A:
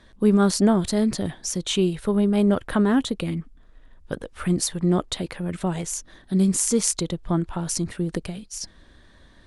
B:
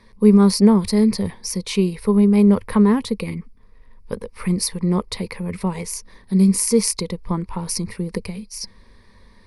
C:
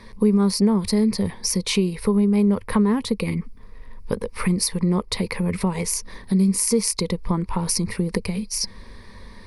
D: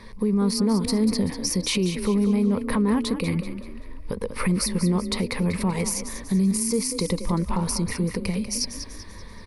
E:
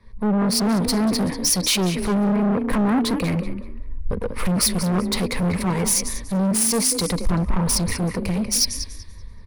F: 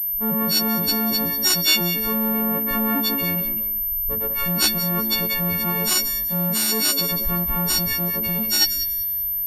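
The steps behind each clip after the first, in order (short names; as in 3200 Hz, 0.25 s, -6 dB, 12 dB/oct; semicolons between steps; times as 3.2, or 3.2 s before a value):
ripple EQ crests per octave 0.88, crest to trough 13 dB
compressor 2.5:1, threshold -30 dBFS, peak gain reduction 15 dB; gain +8 dB
limiter -15 dBFS, peak gain reduction 10 dB; on a send: frequency-shifting echo 0.192 s, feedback 42%, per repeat +31 Hz, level -10 dB
hard clip -26 dBFS, distortion -7 dB; three-band expander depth 100%; gain +8 dB
frequency quantiser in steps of 4 st; pulse-width modulation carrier 13000 Hz; gain -5 dB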